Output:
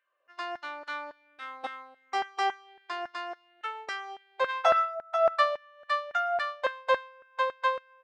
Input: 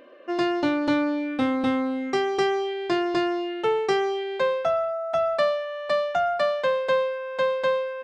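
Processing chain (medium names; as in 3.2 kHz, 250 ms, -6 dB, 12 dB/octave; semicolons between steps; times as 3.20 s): 4.48–4.94 s: spectral peaks clipped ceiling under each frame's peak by 13 dB; LFO high-pass saw down 3.6 Hz 700–1600 Hz; upward expansion 2.5:1, over -36 dBFS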